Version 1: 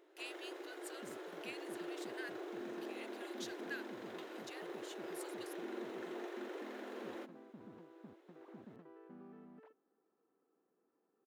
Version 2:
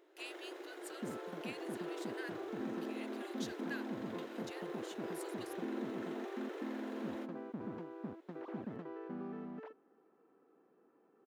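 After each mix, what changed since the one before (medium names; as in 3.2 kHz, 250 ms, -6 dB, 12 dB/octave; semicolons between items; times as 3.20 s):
second sound +11.5 dB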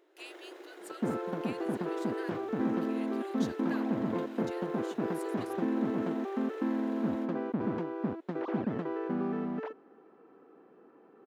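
second sound +11.5 dB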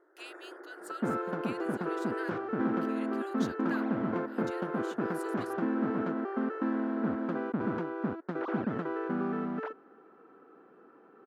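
first sound: add steep low-pass 1.9 kHz 72 dB/octave; master: add peaking EQ 1.4 kHz +9 dB 0.47 oct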